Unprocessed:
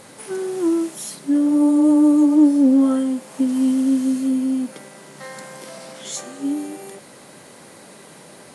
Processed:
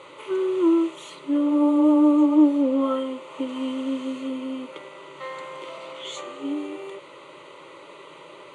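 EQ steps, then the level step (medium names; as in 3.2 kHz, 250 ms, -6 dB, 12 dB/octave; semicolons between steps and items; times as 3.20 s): cabinet simulation 230–5400 Hz, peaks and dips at 260 Hz -4 dB, 460 Hz -7 dB, 2.3 kHz -3 dB, 4.1 kHz -5 dB; static phaser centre 1.1 kHz, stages 8; +6.0 dB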